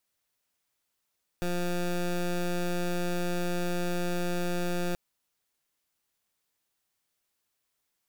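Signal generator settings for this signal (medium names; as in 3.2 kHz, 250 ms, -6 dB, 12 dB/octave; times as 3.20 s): pulse 176 Hz, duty 17% -29 dBFS 3.53 s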